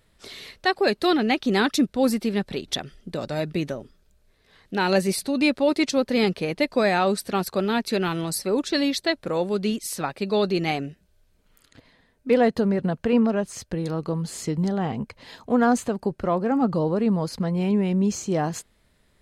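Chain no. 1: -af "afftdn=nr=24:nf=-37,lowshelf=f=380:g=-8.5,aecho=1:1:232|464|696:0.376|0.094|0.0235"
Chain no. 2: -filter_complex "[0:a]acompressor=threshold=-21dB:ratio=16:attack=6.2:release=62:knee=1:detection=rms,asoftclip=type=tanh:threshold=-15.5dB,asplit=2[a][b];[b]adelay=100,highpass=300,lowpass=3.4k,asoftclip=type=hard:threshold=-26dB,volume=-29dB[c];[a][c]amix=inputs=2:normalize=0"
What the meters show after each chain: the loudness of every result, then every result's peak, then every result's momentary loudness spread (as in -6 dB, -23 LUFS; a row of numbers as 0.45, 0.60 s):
-27.0, -28.0 LUFS; -9.0, -17.0 dBFS; 11, 6 LU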